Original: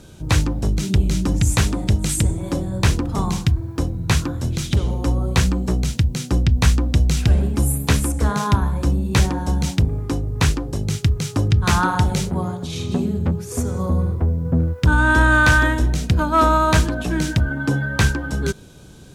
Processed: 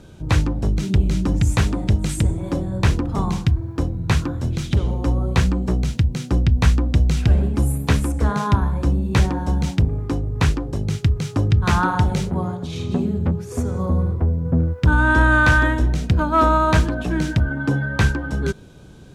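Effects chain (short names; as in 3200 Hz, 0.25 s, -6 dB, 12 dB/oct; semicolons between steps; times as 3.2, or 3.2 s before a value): high shelf 4400 Hz -10.5 dB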